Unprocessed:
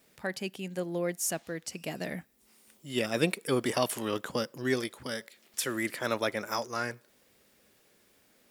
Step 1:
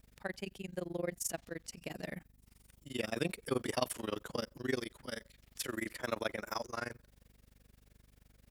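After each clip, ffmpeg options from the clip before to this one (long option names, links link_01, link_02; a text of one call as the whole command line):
ffmpeg -i in.wav -af "aeval=exprs='val(0)+0.00158*(sin(2*PI*50*n/s)+sin(2*PI*2*50*n/s)/2+sin(2*PI*3*50*n/s)/3+sin(2*PI*4*50*n/s)/4+sin(2*PI*5*50*n/s)/5)':channel_layout=same,tremolo=f=23:d=0.974,volume=-2.5dB" out.wav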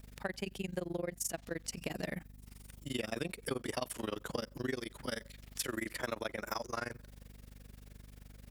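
ffmpeg -i in.wav -af "acompressor=threshold=-42dB:ratio=6,aeval=exprs='val(0)+0.000282*(sin(2*PI*50*n/s)+sin(2*PI*2*50*n/s)/2+sin(2*PI*3*50*n/s)/3+sin(2*PI*4*50*n/s)/4+sin(2*PI*5*50*n/s)/5)':channel_layout=same,volume=8dB" out.wav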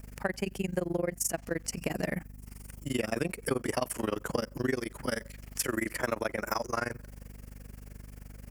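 ffmpeg -i in.wav -af "equalizer=frequency=3700:width_type=o:width=0.44:gain=-14.5,volume=7dB" out.wav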